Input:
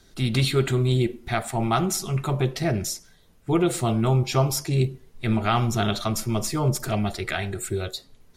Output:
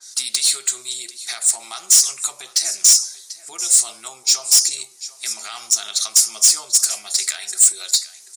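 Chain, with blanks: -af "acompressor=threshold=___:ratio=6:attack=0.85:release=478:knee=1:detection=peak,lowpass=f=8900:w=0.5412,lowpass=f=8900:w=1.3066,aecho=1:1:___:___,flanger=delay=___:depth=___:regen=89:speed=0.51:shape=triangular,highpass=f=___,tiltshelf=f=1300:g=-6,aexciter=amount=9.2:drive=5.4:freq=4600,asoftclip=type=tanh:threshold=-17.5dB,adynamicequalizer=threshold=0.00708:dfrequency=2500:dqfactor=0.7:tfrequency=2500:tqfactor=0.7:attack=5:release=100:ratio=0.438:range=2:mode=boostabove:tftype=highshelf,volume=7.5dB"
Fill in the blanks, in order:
-27dB, 740, 0.126, 3.2, 2.7, 740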